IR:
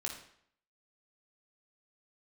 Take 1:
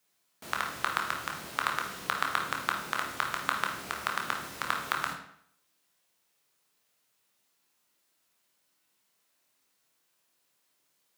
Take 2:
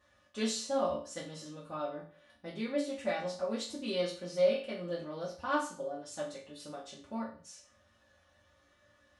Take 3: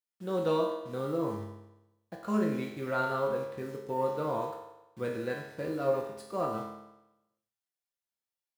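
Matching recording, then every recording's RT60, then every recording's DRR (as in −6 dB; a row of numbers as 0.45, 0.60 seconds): 1; 0.65, 0.40, 0.95 seconds; 0.5, −8.5, −2.5 decibels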